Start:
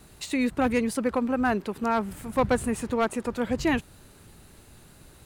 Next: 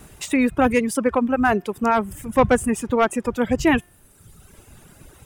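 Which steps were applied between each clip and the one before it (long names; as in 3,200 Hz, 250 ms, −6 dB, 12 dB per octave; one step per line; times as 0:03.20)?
hum removal 355.5 Hz, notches 17
reverb reduction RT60 1.2 s
parametric band 4,200 Hz −13 dB 0.21 octaves
level +7.5 dB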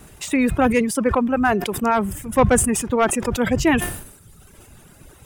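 level that may fall only so fast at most 77 dB per second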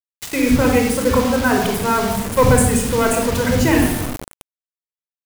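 rectangular room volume 3,400 cubic metres, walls furnished, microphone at 4.9 metres
bit reduction 4 bits
level −2.5 dB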